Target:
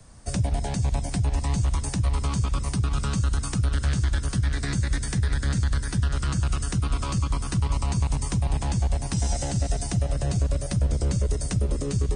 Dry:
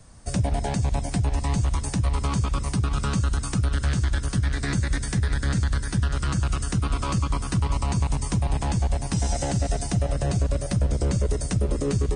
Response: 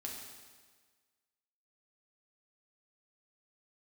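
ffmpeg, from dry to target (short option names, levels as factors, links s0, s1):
-filter_complex "[0:a]acrossover=split=170|3000[s0][s1][s2];[s1]acompressor=threshold=0.02:ratio=2[s3];[s0][s3][s2]amix=inputs=3:normalize=0"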